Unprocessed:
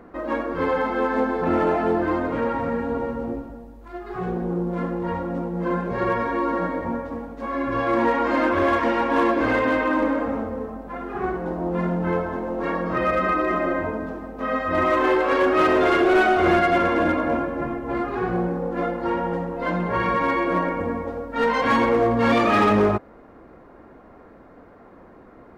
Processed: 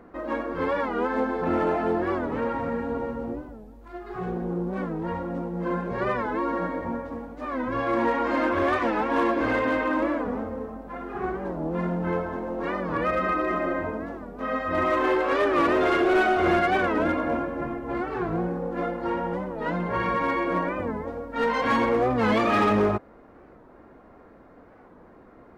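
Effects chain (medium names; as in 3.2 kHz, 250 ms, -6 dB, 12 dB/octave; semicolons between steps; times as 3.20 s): warped record 45 rpm, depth 160 cents; trim -3.5 dB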